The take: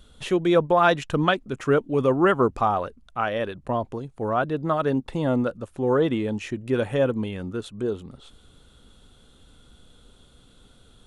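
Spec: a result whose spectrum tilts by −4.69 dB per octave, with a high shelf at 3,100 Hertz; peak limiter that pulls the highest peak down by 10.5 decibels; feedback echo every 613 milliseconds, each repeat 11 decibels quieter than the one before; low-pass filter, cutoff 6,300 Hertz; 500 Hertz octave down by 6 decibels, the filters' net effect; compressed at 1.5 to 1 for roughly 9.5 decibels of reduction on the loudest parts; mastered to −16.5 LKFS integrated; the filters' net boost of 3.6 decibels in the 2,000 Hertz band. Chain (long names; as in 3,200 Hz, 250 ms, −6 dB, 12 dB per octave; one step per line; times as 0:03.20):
low-pass filter 6,300 Hz
parametric band 500 Hz −8 dB
parametric band 2,000 Hz +4.5 dB
high-shelf EQ 3,100 Hz +4 dB
downward compressor 1.5 to 1, threshold −42 dBFS
brickwall limiter −25.5 dBFS
repeating echo 613 ms, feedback 28%, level −11 dB
level +19.5 dB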